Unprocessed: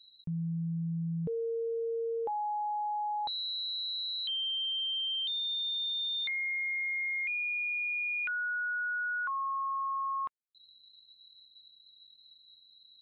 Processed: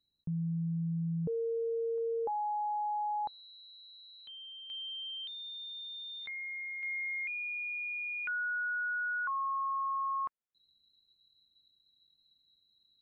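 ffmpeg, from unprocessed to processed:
ffmpeg -i in.wav -af "asetnsamples=nb_out_samples=441:pad=0,asendcmd='1.98 lowpass f 1400;4.7 lowpass f 2100;6.26 lowpass f 1500;6.83 lowpass f 2100',lowpass=1100" out.wav

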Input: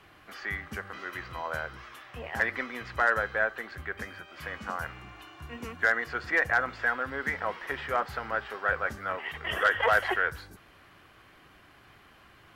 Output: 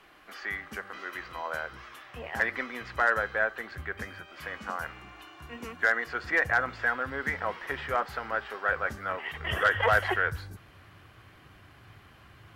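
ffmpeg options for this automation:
ffmpeg -i in.wav -af "asetnsamples=nb_out_samples=441:pad=0,asendcmd='1.72 equalizer g -3;3.6 equalizer g 3.5;4.32 equalizer g -7;6.25 equalizer g 3.5;7.94 equalizer g -5.5;8.76 equalizer g 1.5;9.4 equalizer g 11.5',equalizer=frequency=100:width_type=o:width=1.2:gain=-13.5" out.wav

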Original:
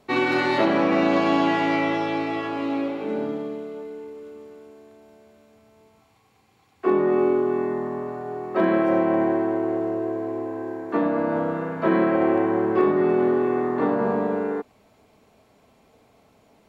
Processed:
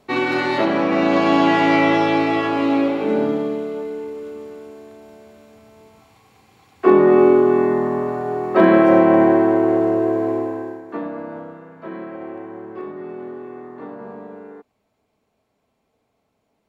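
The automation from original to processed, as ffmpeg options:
ffmpeg -i in.wav -af "volume=8dB,afade=type=in:start_time=0.89:duration=1.09:silence=0.473151,afade=type=out:start_time=10.31:duration=0.51:silence=0.251189,afade=type=out:start_time=10.82:duration=0.79:silence=0.375837" out.wav

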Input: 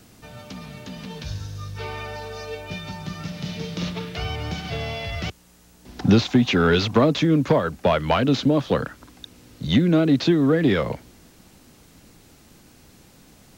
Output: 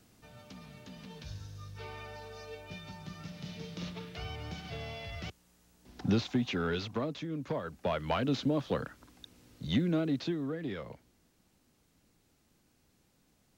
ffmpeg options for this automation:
ffmpeg -i in.wav -af "volume=-3.5dB,afade=type=out:start_time=6.28:duration=1.01:silence=0.421697,afade=type=in:start_time=7.29:duration=0.9:silence=0.354813,afade=type=out:start_time=9.8:duration=0.76:silence=0.398107" out.wav

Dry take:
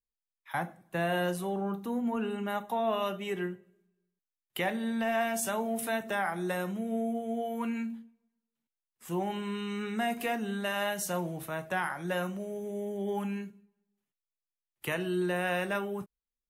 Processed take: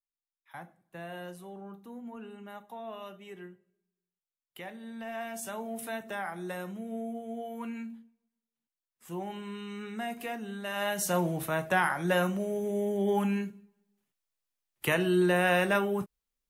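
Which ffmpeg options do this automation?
ffmpeg -i in.wav -af "volume=5.5dB,afade=type=in:start_time=4.79:duration=0.99:silence=0.446684,afade=type=in:start_time=10.64:duration=0.6:silence=0.298538" out.wav

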